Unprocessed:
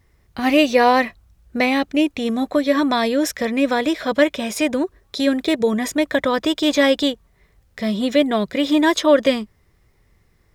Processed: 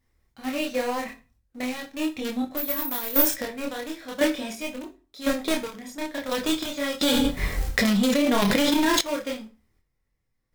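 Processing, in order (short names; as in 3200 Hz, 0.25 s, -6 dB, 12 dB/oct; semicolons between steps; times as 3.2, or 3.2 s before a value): high shelf 3600 Hz +3.5 dB; in parallel at -6 dB: companded quantiser 2-bit; on the sum: chopper 0.95 Hz, depth 65%, duty 30%; chorus voices 2, 0.41 Hz, delay 27 ms, depth 4.4 ms; on a send at -5 dB: reverb RT60 0.35 s, pre-delay 4 ms; 2.57–3.36 on the sum: careless resampling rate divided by 3×, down none, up zero stuff; 7.01–9.01 fast leveller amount 100%; gain -9.5 dB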